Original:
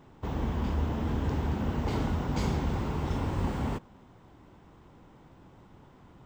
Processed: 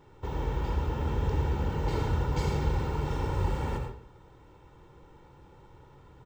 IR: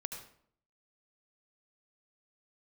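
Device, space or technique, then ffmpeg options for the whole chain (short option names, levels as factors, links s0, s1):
microphone above a desk: -filter_complex "[0:a]aecho=1:1:2.2:0.62[s0];[1:a]atrim=start_sample=2205[s1];[s0][s1]afir=irnorm=-1:irlink=0"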